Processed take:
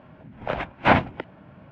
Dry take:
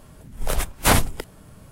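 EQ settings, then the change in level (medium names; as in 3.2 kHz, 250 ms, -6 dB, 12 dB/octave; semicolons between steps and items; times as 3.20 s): cabinet simulation 100–2400 Hz, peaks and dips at 430 Hz -8 dB, 1.2 kHz -6 dB, 1.9 kHz -4 dB; bass shelf 160 Hz -8.5 dB; +5.0 dB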